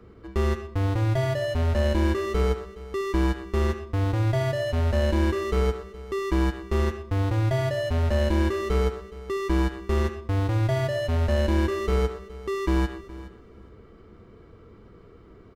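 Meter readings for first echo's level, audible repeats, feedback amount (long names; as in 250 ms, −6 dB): −17.5 dB, 2, 16%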